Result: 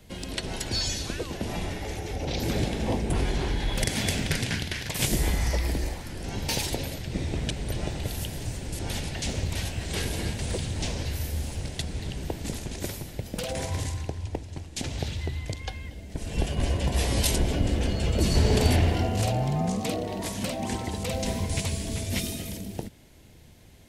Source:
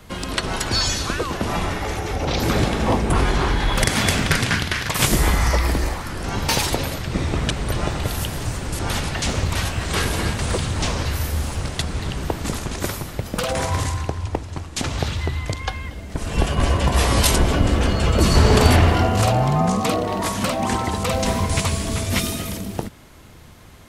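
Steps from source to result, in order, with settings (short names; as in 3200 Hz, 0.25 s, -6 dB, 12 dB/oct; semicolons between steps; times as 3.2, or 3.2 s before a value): bell 1200 Hz -13.5 dB 0.71 oct; gain -7 dB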